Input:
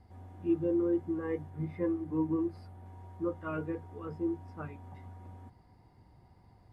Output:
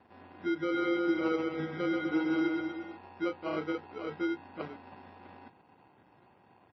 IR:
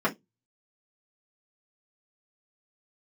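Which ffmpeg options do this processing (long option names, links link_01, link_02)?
-filter_complex "[0:a]alimiter=level_in=4dB:limit=-24dB:level=0:latency=1:release=156,volume=-4dB,acrusher=samples=25:mix=1:aa=0.000001,highpass=280,lowpass=2200,asplit=3[link_01][link_02][link_03];[link_01]afade=type=out:start_time=0.73:duration=0.02[link_04];[link_02]aecho=1:1:130|247|352.3|447.1|532.4:0.631|0.398|0.251|0.158|0.1,afade=type=in:start_time=0.73:duration=0.02,afade=type=out:start_time=2.96:duration=0.02[link_05];[link_03]afade=type=in:start_time=2.96:duration=0.02[link_06];[link_04][link_05][link_06]amix=inputs=3:normalize=0,volume=6dB" -ar 22050 -c:a libmp3lame -b:a 24k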